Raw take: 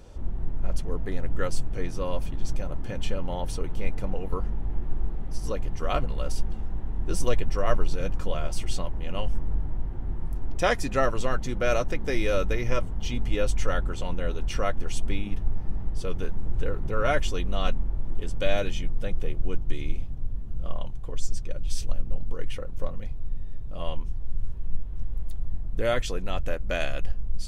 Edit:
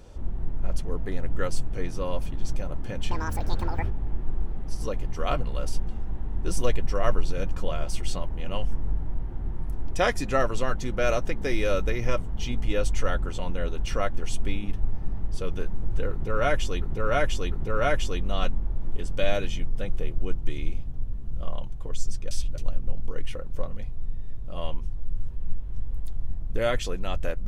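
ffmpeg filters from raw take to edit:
-filter_complex "[0:a]asplit=7[s0][s1][s2][s3][s4][s5][s6];[s0]atrim=end=3.114[s7];[s1]atrim=start=3.11:end=4.53,asetpts=PTS-STARTPTS,asetrate=79380,aresample=44100[s8];[s2]atrim=start=4.526:end=17.452[s9];[s3]atrim=start=16.748:end=17.452[s10];[s4]atrim=start=16.748:end=21.542[s11];[s5]atrim=start=21.538:end=21.812,asetpts=PTS-STARTPTS,areverse[s12];[s6]atrim=start=21.808[s13];[s7][s8]acrossfade=d=0.004:c1=hsin:c2=hsin[s14];[s14][s9]acrossfade=d=0.004:c1=hsin:c2=hsin[s15];[s15][s10]acrossfade=d=0.004:c1=hsin:c2=hsin[s16];[s16][s11]acrossfade=d=0.004:c1=hsin:c2=hsin[s17];[s17][s12]acrossfade=d=0.004:c1=hsin:c2=hsin[s18];[s18][s13]acrossfade=d=0.004:c1=hsin:c2=hsin"

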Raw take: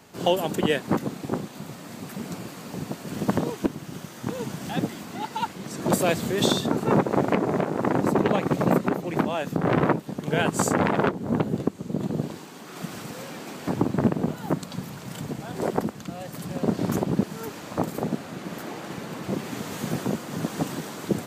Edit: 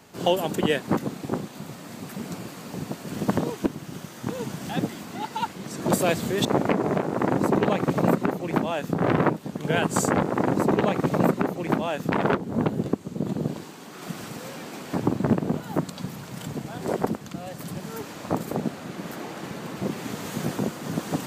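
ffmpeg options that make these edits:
-filter_complex "[0:a]asplit=5[s0][s1][s2][s3][s4];[s0]atrim=end=6.452[s5];[s1]atrim=start=7.078:end=10.862[s6];[s2]atrim=start=7.698:end=9.592[s7];[s3]atrim=start=10.858:end=16.542[s8];[s4]atrim=start=17.268[s9];[s5][s6]acrossfade=d=0.004:c1=hsin:c2=hsin[s10];[s10][s7]acrossfade=d=0.004:c1=hsin:c2=hsin[s11];[s11][s8]acrossfade=d=0.004:c1=hsin:c2=hsin[s12];[s12][s9]acrossfade=d=0.004:c1=hsin:c2=hsin"

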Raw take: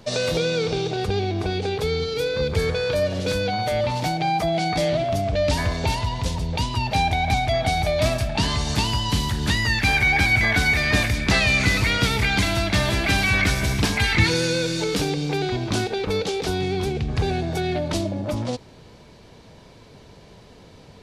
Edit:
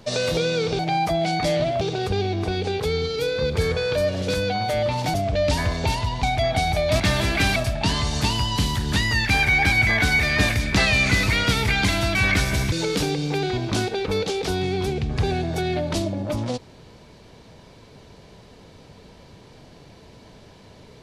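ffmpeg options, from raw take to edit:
-filter_complex "[0:a]asplit=9[s0][s1][s2][s3][s4][s5][s6][s7][s8];[s0]atrim=end=0.792[s9];[s1]atrim=start=4.118:end=5.142[s10];[s2]atrim=start=0.788:end=4.122[s11];[s3]atrim=start=5.138:end=6.232[s12];[s4]atrim=start=7.328:end=8.102[s13];[s5]atrim=start=12.688:end=13.252[s14];[s6]atrim=start=8.098:end=12.692[s15];[s7]atrim=start=13.248:end=13.822[s16];[s8]atrim=start=14.708[s17];[s9][s10]acrossfade=d=0.004:c1=hsin:c2=hsin[s18];[s18][s11]acrossfade=d=0.004:c1=hsin:c2=hsin[s19];[s19][s12]acrossfade=d=0.004:c1=hsin:c2=hsin[s20];[s20][s13]acrossfade=d=0.004:c1=hsin:c2=hsin[s21];[s21][s14]acrossfade=d=0.004:c1=hsin:c2=hsin[s22];[s22][s15]acrossfade=d=0.004:c1=hsin:c2=hsin[s23];[s23][s16]acrossfade=d=0.004:c1=hsin:c2=hsin[s24];[s24][s17]acrossfade=d=0.004:c1=hsin:c2=hsin"

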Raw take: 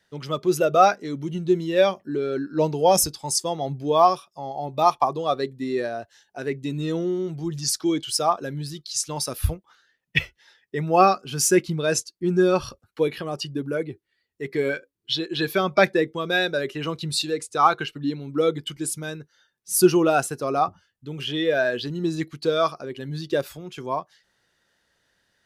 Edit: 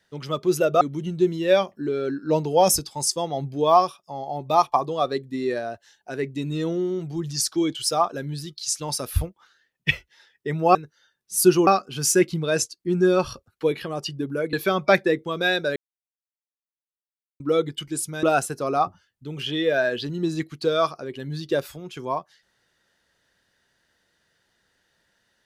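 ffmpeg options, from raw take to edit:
-filter_complex "[0:a]asplit=8[s0][s1][s2][s3][s4][s5][s6][s7];[s0]atrim=end=0.812[s8];[s1]atrim=start=1.088:end=11.032[s9];[s2]atrim=start=19.118:end=20.042[s10];[s3]atrim=start=11.028:end=13.892[s11];[s4]atrim=start=15.418:end=16.65,asetpts=PTS-STARTPTS,afade=t=out:st=1.228:d=0.004:c=hsin[s12];[s5]atrim=start=16.65:end=18.29,asetpts=PTS-STARTPTS,volume=0[s13];[s6]atrim=start=18.29:end=19.122,asetpts=PTS-STARTPTS,afade=t=in:d=0.004:c=hsin[s14];[s7]atrim=start=20.038[s15];[s8][s9]acrossfade=d=0.004:c1=hsin:c2=hsin[s16];[s16][s10]acrossfade=d=0.004:c1=hsin:c2=hsin[s17];[s17][s11]acrossfade=d=0.004:c1=hsin:c2=hsin[s18];[s12][s13][s14]concat=n=3:v=0:a=1[s19];[s18][s19]acrossfade=d=0.004:c1=hsin:c2=hsin[s20];[s20][s15]acrossfade=d=0.004:c1=hsin:c2=hsin"

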